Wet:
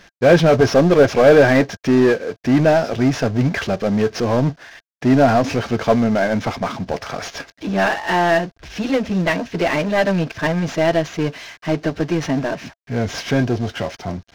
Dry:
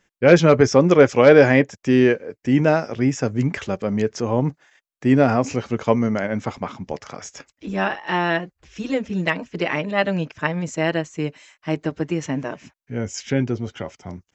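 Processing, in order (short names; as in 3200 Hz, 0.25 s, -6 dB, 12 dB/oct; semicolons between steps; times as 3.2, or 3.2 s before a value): CVSD 32 kbps; power-law curve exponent 0.7; small resonant body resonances 680/1600 Hz, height 8 dB; gain -1 dB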